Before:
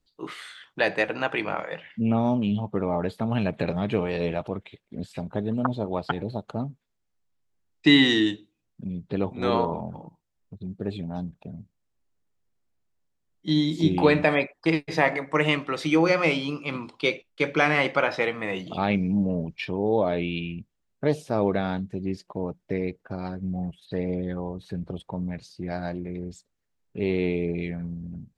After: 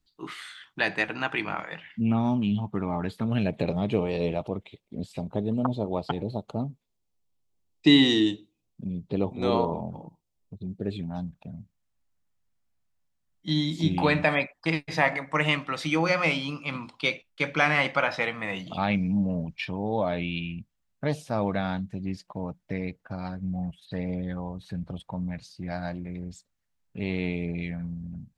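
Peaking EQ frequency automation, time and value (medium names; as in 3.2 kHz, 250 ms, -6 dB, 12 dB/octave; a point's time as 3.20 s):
peaking EQ -11 dB 0.7 oct
3.06 s 520 Hz
3.64 s 1.6 kHz
10.71 s 1.6 kHz
11.16 s 390 Hz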